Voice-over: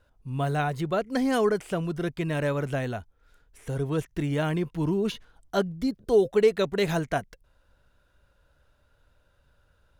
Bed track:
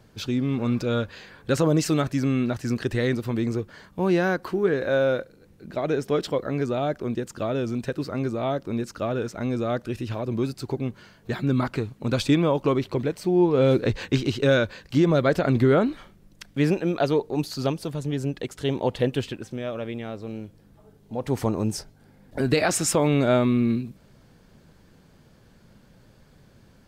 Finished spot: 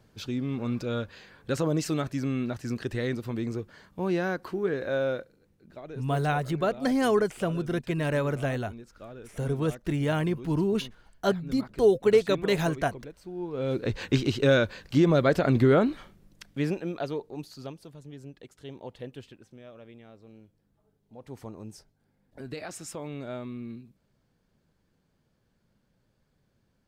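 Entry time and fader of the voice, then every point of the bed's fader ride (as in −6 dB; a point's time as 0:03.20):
5.70 s, 0.0 dB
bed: 0:05.09 −6 dB
0:05.91 −17.5 dB
0:13.35 −17.5 dB
0:14.06 −1.5 dB
0:16.00 −1.5 dB
0:17.96 −17 dB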